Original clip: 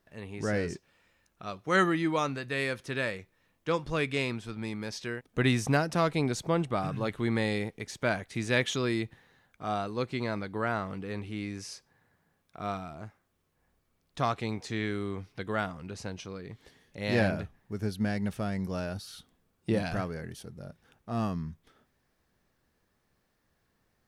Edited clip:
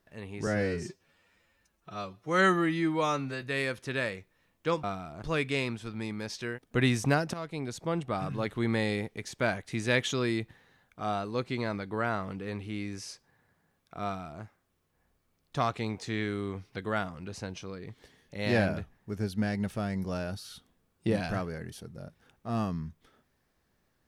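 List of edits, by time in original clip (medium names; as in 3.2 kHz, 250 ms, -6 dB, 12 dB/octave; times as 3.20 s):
0.47–2.44 s: stretch 1.5×
5.96–7.42 s: fade in equal-power, from -14.5 dB
12.66–13.05 s: copy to 3.85 s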